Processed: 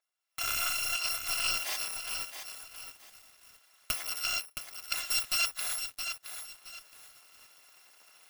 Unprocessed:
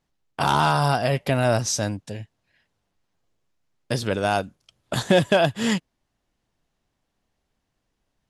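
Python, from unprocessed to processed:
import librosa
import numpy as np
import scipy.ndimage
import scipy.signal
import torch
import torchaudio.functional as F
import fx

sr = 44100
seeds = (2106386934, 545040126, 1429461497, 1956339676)

p1 = fx.bit_reversed(x, sr, seeds[0], block=256)
p2 = fx.recorder_agc(p1, sr, target_db=-15.5, rise_db_per_s=39.0, max_gain_db=30)
p3 = scipy.signal.sosfilt(scipy.signal.butter(2, 830.0, 'highpass', fs=sr, output='sos'), p2)
p4 = 10.0 ** (-15.0 / 20.0) * (np.abs((p3 / 10.0 ** (-15.0 / 20.0) + 3.0) % 4.0 - 2.0) - 1.0)
p5 = p3 + (p4 * librosa.db_to_amplitude(-4.0))
p6 = fx.high_shelf(p5, sr, hz=4900.0, db=-11.0)
p7 = fx.echo_crushed(p6, sr, ms=669, feedback_pct=35, bits=7, wet_db=-7)
y = p7 * librosa.db_to_amplitude(-7.5)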